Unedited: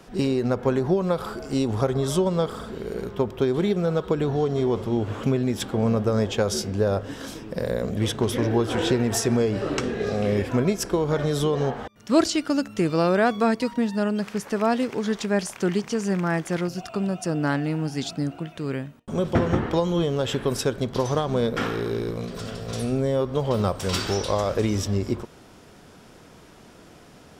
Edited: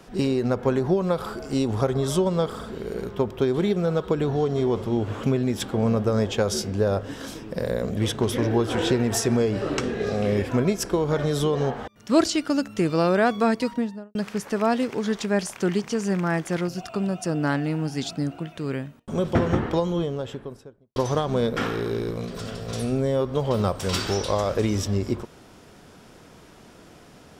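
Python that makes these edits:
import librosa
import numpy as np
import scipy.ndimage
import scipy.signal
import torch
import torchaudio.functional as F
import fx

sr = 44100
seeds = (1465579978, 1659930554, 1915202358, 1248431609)

y = fx.studio_fade_out(x, sr, start_s=13.67, length_s=0.48)
y = fx.studio_fade_out(y, sr, start_s=19.54, length_s=1.42)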